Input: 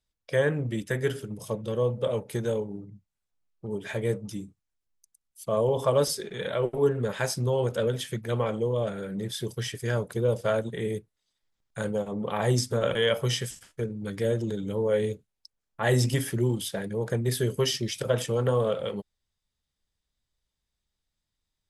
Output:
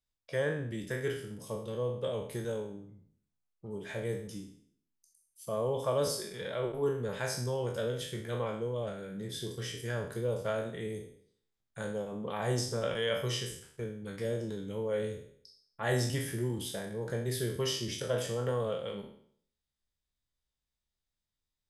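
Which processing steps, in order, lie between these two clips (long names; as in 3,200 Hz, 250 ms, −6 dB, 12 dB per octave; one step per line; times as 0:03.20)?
peak hold with a decay on every bin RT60 0.59 s
level −8.5 dB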